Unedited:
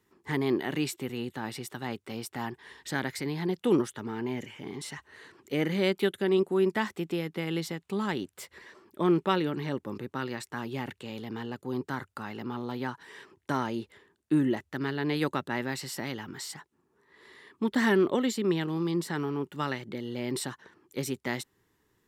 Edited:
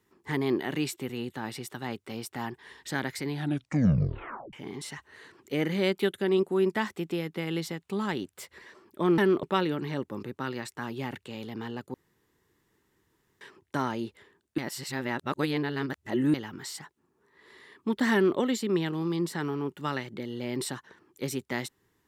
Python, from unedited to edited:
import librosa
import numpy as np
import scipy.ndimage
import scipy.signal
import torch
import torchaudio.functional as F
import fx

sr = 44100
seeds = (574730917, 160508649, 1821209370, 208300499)

y = fx.edit(x, sr, fx.tape_stop(start_s=3.28, length_s=1.25),
    fx.room_tone_fill(start_s=11.69, length_s=1.47),
    fx.reverse_span(start_s=14.33, length_s=1.76),
    fx.duplicate(start_s=17.88, length_s=0.25, to_s=9.18), tone=tone)